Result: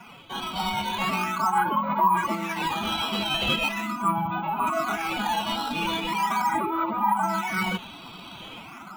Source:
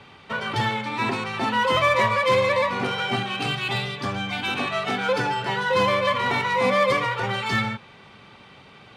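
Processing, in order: short-mantissa float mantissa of 2-bit; reverse; compression 5:1, threshold -31 dBFS, peak gain reduction 14 dB; reverse; LFO low-pass sine 0.4 Hz 920–4500 Hz; level rider gain up to 5.5 dB; dynamic bell 440 Hz, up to -4 dB, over -41 dBFS, Q 2.7; formant-preserving pitch shift +9 st; static phaser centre 1.8 kHz, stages 6; in parallel at -5 dB: decimation with a swept rate 11×, swing 160% 0.4 Hz

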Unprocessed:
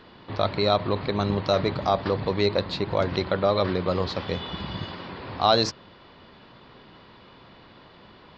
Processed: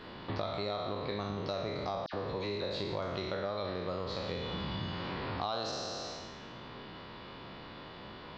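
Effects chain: spectral sustain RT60 1.16 s; compression 6:1, threshold -34 dBFS, peak gain reduction 20 dB; 2.06–2.76 s: phase dispersion lows, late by 70 ms, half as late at 2.1 kHz

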